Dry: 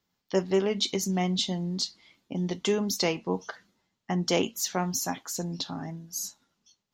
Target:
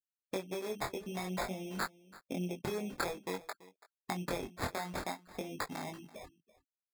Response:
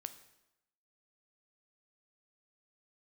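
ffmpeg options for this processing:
-filter_complex "[0:a]highpass=frequency=340:poles=1,afwtdn=0.0158,aemphasis=mode=reproduction:type=50fm,afftfilt=real='re*gte(hypot(re,im),0.00355)':imag='im*gte(hypot(re,im),0.00355)':win_size=1024:overlap=0.75,equalizer=frequency=1300:width_type=o:width=2.6:gain=6,bandreject=frequency=2700:width=16,asplit=2[link_01][link_02];[link_02]alimiter=limit=-20.5dB:level=0:latency=1:release=12,volume=-3dB[link_03];[link_01][link_03]amix=inputs=2:normalize=0,acompressor=threshold=-37dB:ratio=8,crystalizer=i=1.5:c=0,acrusher=samples=15:mix=1:aa=0.000001,flanger=delay=20:depth=3.7:speed=0.53,aecho=1:1:334:0.106,volume=4dB"

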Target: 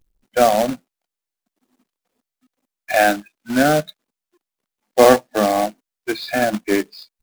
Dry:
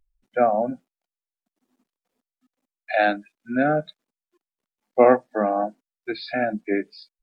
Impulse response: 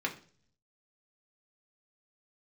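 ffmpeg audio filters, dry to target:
-af "acrusher=bits=2:mode=log:mix=0:aa=0.000001,acontrast=29"

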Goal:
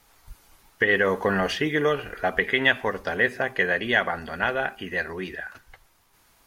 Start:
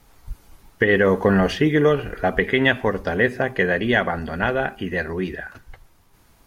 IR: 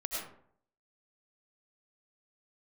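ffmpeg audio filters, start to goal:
-af "lowshelf=frequency=480:gain=-11.5"

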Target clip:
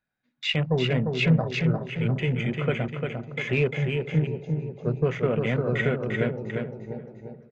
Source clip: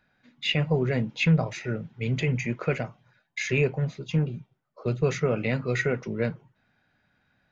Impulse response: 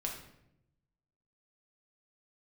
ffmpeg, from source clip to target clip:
-filter_complex "[0:a]asplit=2[link_01][link_02];[link_02]aecho=0:1:349|698|1047|1396|1745|2094|2443:0.596|0.328|0.18|0.0991|0.0545|0.03|0.0165[link_03];[link_01][link_03]amix=inputs=2:normalize=0,afwtdn=0.0158,asplit=2[link_04][link_05];[link_05]adelay=422,lowpass=frequency=1200:poles=1,volume=-17.5dB,asplit=2[link_06][link_07];[link_07]adelay=422,lowpass=frequency=1200:poles=1,volume=0.42,asplit=2[link_08][link_09];[link_09]adelay=422,lowpass=frequency=1200:poles=1,volume=0.42[link_10];[link_06][link_08][link_10]amix=inputs=3:normalize=0[link_11];[link_04][link_11]amix=inputs=2:normalize=0"

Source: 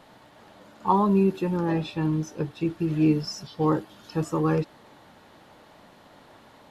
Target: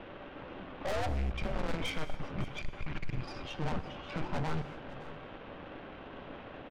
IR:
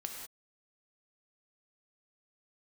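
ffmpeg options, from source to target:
-filter_complex "[0:a]alimiter=limit=-18dB:level=0:latency=1:release=218,highpass=frequency=320:width_type=q:width=0.5412,highpass=frequency=320:width_type=q:width=1.307,lowpass=frequency=3400:width_type=q:width=0.5176,lowpass=frequency=3400:width_type=q:width=0.7071,lowpass=frequency=3400:width_type=q:width=1.932,afreqshift=-320,aeval=exprs='(tanh(141*val(0)+0.7)-tanh(0.7))/141':channel_layout=same,aecho=1:1:558:0.15,asplit=2[link_01][link_02];[1:a]atrim=start_sample=2205,asetrate=34398,aresample=44100[link_03];[link_02][link_03]afir=irnorm=-1:irlink=0,volume=-6dB[link_04];[link_01][link_04]amix=inputs=2:normalize=0,volume=7.5dB"

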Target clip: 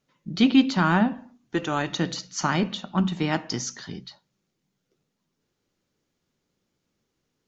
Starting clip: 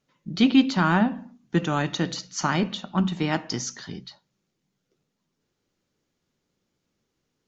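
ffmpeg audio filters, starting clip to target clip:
ffmpeg -i in.wav -filter_complex "[0:a]asettb=1/sr,asplit=3[link_01][link_02][link_03];[link_01]atrim=end=1.134[link_04];[link_02]atrim=start=1.13:end=1.9,asetpts=PTS-STARTPTS,afade=type=in:duration=0.004:curve=qsin,afade=type=out:start_time=0.766:duration=0.004:curve=qsin,equalizer=frequency=180:width_type=o:width=0.49:gain=-13[link_05];[link_03]atrim=start=1.896[link_06];[link_04][link_05]acrossfade=duration=0.004:curve1=hsin:curve2=qsin[link_07];[link_07][link_06]acrossfade=duration=0.004:curve1=qsin:curve2=hsin" out.wav

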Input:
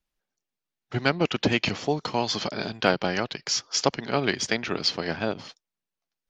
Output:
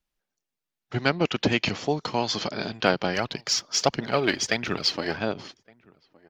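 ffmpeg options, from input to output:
ffmpeg -i in.wav -filter_complex "[0:a]asplit=3[link_01][link_02][link_03];[link_01]afade=type=out:start_time=3.13:duration=0.02[link_04];[link_02]aphaser=in_gain=1:out_gain=1:delay=3.7:decay=0.47:speed=1.5:type=triangular,afade=type=in:start_time=3.13:duration=0.02,afade=type=out:start_time=5.17:duration=0.02[link_05];[link_03]afade=type=in:start_time=5.17:duration=0.02[link_06];[link_04][link_05][link_06]amix=inputs=3:normalize=0,asplit=2[link_07][link_08];[link_08]adelay=1166,volume=-26dB,highshelf=frequency=4000:gain=-26.2[link_09];[link_07][link_09]amix=inputs=2:normalize=0" out.wav

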